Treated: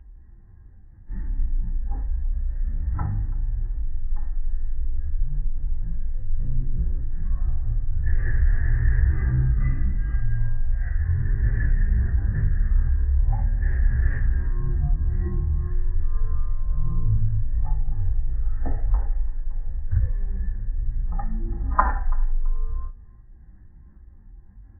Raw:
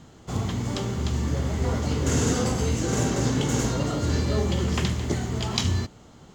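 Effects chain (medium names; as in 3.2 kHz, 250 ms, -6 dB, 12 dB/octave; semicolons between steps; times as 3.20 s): spectral contrast enhancement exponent 1.9; wide varispeed 0.256×; resonant high shelf 3.4 kHz -6 dB, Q 3; on a send: feedback delay 332 ms, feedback 20%, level -23 dB; on the sum: trim +4.5 dB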